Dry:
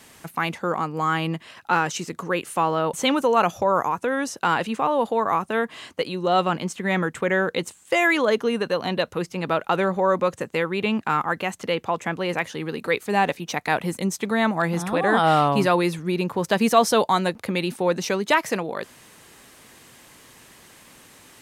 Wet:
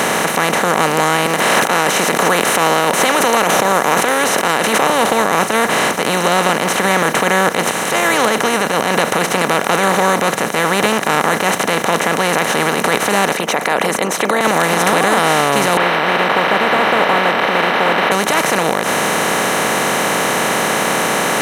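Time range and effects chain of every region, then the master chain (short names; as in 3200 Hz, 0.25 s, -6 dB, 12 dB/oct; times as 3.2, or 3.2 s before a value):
1.26–4.9 HPF 320 Hz + high shelf 8600 Hz +8 dB + backwards sustainer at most 65 dB/s
13.33–14.41 formant sharpening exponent 2 + HPF 490 Hz + gate -46 dBFS, range -10 dB
15.77–18.12 delta modulation 16 kbps, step -31.5 dBFS + HPF 840 Hz + air absorption 76 m
whole clip: per-bin compression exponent 0.2; limiter -1 dBFS; gain -1 dB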